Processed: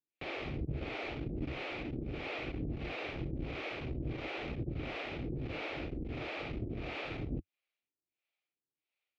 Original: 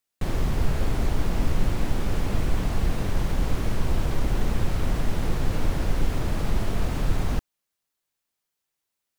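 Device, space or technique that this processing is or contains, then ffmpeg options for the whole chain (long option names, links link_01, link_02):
guitar amplifier with harmonic tremolo: -filter_complex "[0:a]acrossover=split=430[link_01][link_02];[link_01]aeval=exprs='val(0)*(1-1/2+1/2*cos(2*PI*1.5*n/s))':channel_layout=same[link_03];[link_02]aeval=exprs='val(0)*(1-1/2-1/2*cos(2*PI*1.5*n/s))':channel_layout=same[link_04];[link_03][link_04]amix=inputs=2:normalize=0,asoftclip=type=tanh:threshold=-19.5dB,highpass=82,equalizer=frequency=92:width_type=q:width=4:gain=-7,equalizer=frequency=190:width_type=q:width=4:gain=-9,equalizer=frequency=320:width_type=q:width=4:gain=5,equalizer=frequency=1000:width_type=q:width=4:gain=-10,equalizer=frequency=1600:width_type=q:width=4:gain=-6,equalizer=frequency=2400:width_type=q:width=4:gain=9,lowpass=frequency=3800:width=0.5412,lowpass=frequency=3800:width=1.3066,volume=-1.5dB"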